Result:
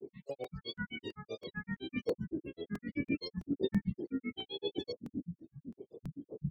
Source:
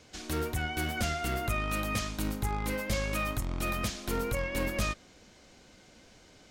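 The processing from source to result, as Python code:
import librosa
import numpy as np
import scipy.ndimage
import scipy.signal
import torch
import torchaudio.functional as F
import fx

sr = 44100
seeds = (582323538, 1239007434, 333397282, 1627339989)

y = fx.dmg_wind(x, sr, seeds[0], corner_hz=190.0, level_db=-33.0)
y = scipy.signal.sosfilt(scipy.signal.butter(4, 49.0, 'highpass', fs=sr, output='sos'), y)
y = fx.notch(y, sr, hz=2000.0, q=11.0)
y = fx.spec_topn(y, sr, count=32)
y = fx.vowel_filter(y, sr, vowel='i')
y = fx.granulator(y, sr, seeds[1], grain_ms=100.0, per_s=7.8, spray_ms=18.0, spread_st=12)
y = fx.buffer_crackle(y, sr, first_s=0.44, period_s=0.33, block=128, kind='repeat')
y = y * librosa.db_to_amplitude(9.0)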